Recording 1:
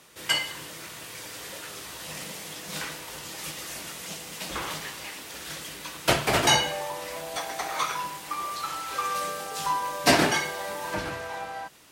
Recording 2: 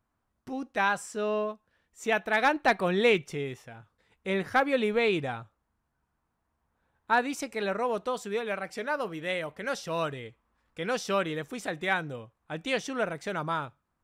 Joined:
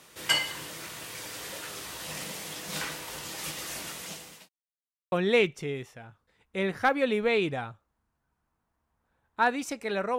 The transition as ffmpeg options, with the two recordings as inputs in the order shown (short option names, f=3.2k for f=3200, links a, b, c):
-filter_complex "[0:a]apad=whole_dur=10.18,atrim=end=10.18,asplit=2[a][b];[a]atrim=end=4.49,asetpts=PTS-STARTPTS,afade=t=out:st=3.74:d=0.75:c=qsin[c];[b]atrim=start=4.49:end=5.12,asetpts=PTS-STARTPTS,volume=0[d];[1:a]atrim=start=2.83:end=7.89,asetpts=PTS-STARTPTS,afade=t=in:d=0.004:c=hsin[e];[c][d][e]concat=n=3:v=0:a=1"